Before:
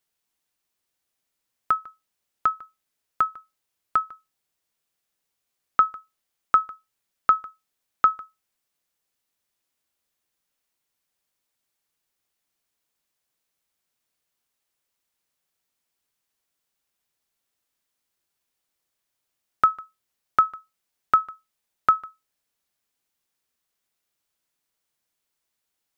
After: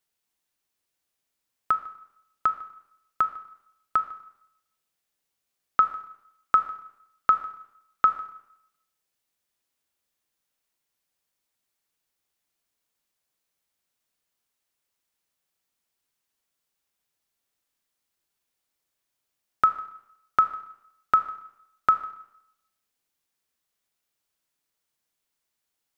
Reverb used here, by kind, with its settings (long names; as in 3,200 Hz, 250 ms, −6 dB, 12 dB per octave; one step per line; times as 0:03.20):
four-comb reverb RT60 0.81 s, combs from 27 ms, DRR 11 dB
level −1.5 dB